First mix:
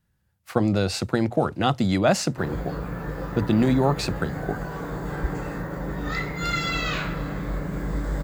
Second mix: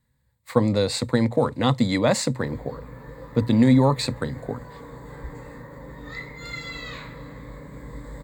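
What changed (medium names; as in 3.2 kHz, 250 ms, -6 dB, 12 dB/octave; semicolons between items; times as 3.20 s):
background -10.5 dB; master: add rippled EQ curve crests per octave 1, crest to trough 11 dB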